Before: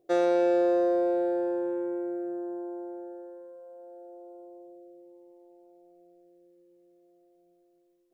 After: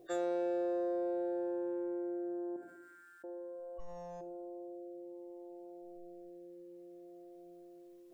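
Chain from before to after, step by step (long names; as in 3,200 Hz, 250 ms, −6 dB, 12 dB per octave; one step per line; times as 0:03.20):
0:03.79–0:04.21: lower of the sound and its delayed copy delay 4.2 ms
noise reduction from a noise print of the clip's start 26 dB
0:02.56–0:03.24: Butterworth high-pass 1,300 Hz 72 dB per octave
rectangular room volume 880 cubic metres, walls furnished, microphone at 0.83 metres
envelope flattener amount 50%
level +11 dB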